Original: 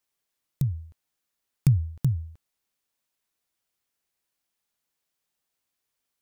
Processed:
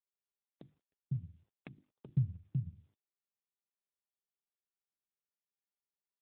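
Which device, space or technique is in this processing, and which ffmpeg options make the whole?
mobile call with aggressive noise cancelling: -filter_complex "[0:a]asettb=1/sr,asplit=3[a][b][c];[a]atrim=end=1.784[d];[b]atrim=start=1.78:end=2.28,asetpts=PTS-STARTPTS,afade=t=in:d=0.004:c=qsin,afade=t=out:st=0.496:d=0.004:c=qsin,agate=range=-33dB:threshold=-28dB:ratio=3:detection=peak[e];[c]atrim=start=2.276[f];[d][e]acrossfade=d=0.004:c1=hsin:c2=qsin[g];[g][f]acrossfade=d=0.004:c1=qsin:c2=hsin,bandreject=f=50:t=h:w=6,bandreject=f=100:t=h:w=6,bandreject=f=150:t=h:w=6,bandreject=f=200:t=h:w=6,bandreject=f=250:t=h:w=6,bandreject=f=300:t=h:w=6,bandreject=f=350:t=h:w=6,adynamicequalizer=threshold=0.0126:dfrequency=200:dqfactor=2.3:tfrequency=200:tqfactor=2.3:attack=5:release=100:ratio=0.375:range=2:mode=cutabove:tftype=bell,highpass=f=150:p=1,acrossover=split=280[h][i];[h]adelay=500[j];[j][i]amix=inputs=2:normalize=0,afftdn=nr=18:nf=-56,volume=-4.5dB" -ar 8000 -c:a libopencore_amrnb -b:a 7950

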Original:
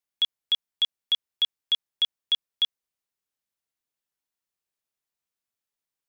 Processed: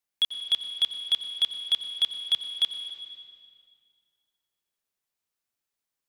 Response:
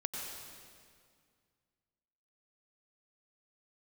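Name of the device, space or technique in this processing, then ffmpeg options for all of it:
saturated reverb return: -filter_complex "[0:a]asettb=1/sr,asplit=3[a][b][c];[a]atrim=end=2.194[d];[b]atrim=start=2.19:end=2.64,asetpts=PTS-STARTPTS,afade=t=in:d=0.004:c=qsin,afade=t=out:st=0.446:d=0.004:c=qsin,highpass=110[e];[c]atrim=start=2.636[f];[d][e]acrossfade=d=0.004:c1=hsin:c2=qsin[g];[g][f]acrossfade=d=0.004:c1=qsin:c2=hsin,asplit=2[h][i];[1:a]atrim=start_sample=2205[j];[i][j]afir=irnorm=-1:irlink=0,asoftclip=type=tanh:threshold=-26dB,volume=-2dB[k];[h][k]amix=inputs=2:normalize=0,volume=-3dB"

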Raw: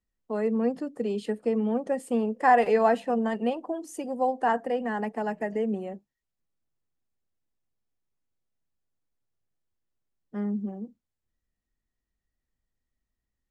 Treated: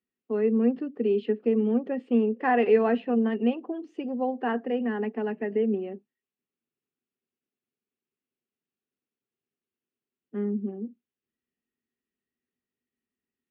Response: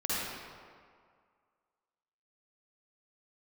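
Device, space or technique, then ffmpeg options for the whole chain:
kitchen radio: -af "highpass=170,equalizer=f=240:t=q:w=4:g=9,equalizer=f=400:t=q:w=4:g=10,equalizer=f=620:t=q:w=4:g=-6,equalizer=f=920:t=q:w=4:g=-6,equalizer=f=2.7k:t=q:w=4:g=6,lowpass=f=3.4k:w=0.5412,lowpass=f=3.4k:w=1.3066,volume=-2.5dB"

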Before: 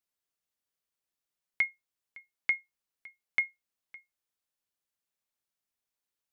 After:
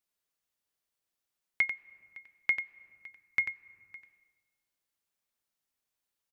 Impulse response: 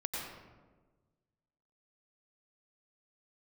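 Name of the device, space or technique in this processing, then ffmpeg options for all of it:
compressed reverb return: -filter_complex "[0:a]asplit=2[a][b];[1:a]atrim=start_sample=2205[c];[b][c]afir=irnorm=-1:irlink=0,acompressor=threshold=-38dB:ratio=10,volume=-13dB[d];[a][d]amix=inputs=2:normalize=0,asettb=1/sr,asplit=3[e][f][g];[e]atrim=end=3.064[h];[f]atrim=start=3.06:end=3.95,asetpts=PTS-STARTPTS,afade=t=in:d=0.004:c=qsin,afade=t=out:st=0.886:d=0.004:c=qsin,equalizer=f=100:t=o:w=0.33:g=11,equalizer=f=630:t=o:w=0.33:g=-12,equalizer=f=3.15k:t=o:w=0.33:g=-7[i];[g]atrim=start=3.946[j];[h][i]acrossfade=d=0.004:c1=hsin:c2=qsin[k];[k][j]acrossfade=d=0.004:c1=qsin:c2=hsin,aecho=1:1:92:0.376"

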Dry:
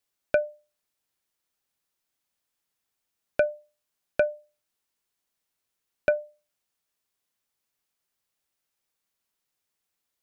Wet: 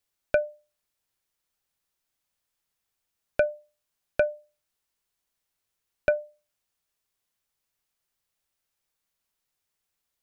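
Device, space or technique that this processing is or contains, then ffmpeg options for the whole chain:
low shelf boost with a cut just above: -af "lowshelf=f=88:g=7.5,equalizer=f=260:t=o:w=1.1:g=-2.5"

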